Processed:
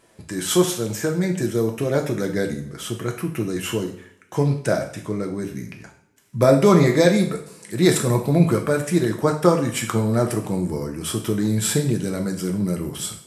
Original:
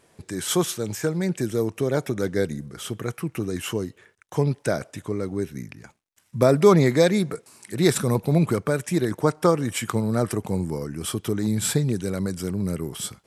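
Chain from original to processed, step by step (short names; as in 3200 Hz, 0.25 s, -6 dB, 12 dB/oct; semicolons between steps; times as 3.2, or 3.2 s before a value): two-slope reverb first 0.52 s, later 1.8 s, from -24 dB, DRR 2 dB; gain +1 dB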